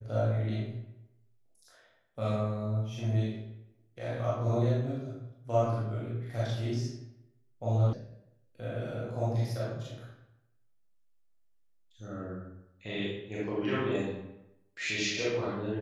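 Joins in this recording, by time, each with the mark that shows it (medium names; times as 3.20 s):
7.93 s: sound stops dead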